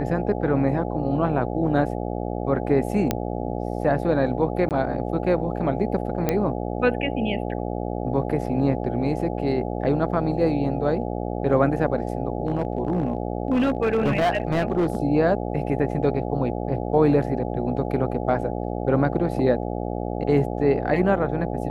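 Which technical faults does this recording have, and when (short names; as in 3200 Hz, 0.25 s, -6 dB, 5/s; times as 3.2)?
buzz 60 Hz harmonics 14 -28 dBFS
3.11 pop -7 dBFS
4.69–4.71 gap 18 ms
6.29 pop -8 dBFS
12.47–14.97 clipped -16.5 dBFS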